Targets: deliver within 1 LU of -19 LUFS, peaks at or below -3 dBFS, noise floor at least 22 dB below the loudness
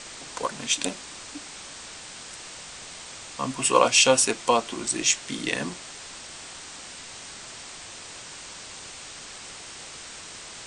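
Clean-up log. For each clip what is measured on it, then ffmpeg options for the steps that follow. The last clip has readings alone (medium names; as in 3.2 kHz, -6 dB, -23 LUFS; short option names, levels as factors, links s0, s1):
noise floor -42 dBFS; noise floor target -45 dBFS; loudness -23.0 LUFS; peak level -4.0 dBFS; loudness target -19.0 LUFS
-> -af "afftdn=nr=6:nf=-42"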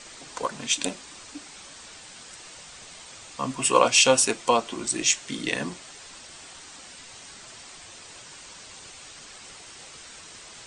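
noise floor -46 dBFS; loudness -23.0 LUFS; peak level -4.0 dBFS; loudness target -19.0 LUFS
-> -af "volume=1.58,alimiter=limit=0.708:level=0:latency=1"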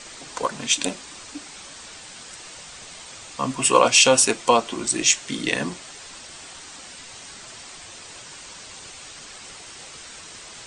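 loudness -19.5 LUFS; peak level -3.0 dBFS; noise floor -42 dBFS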